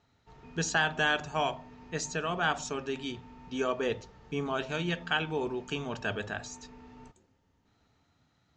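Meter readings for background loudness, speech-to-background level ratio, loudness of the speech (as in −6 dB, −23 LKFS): −52.0 LKFS, 19.5 dB, −32.5 LKFS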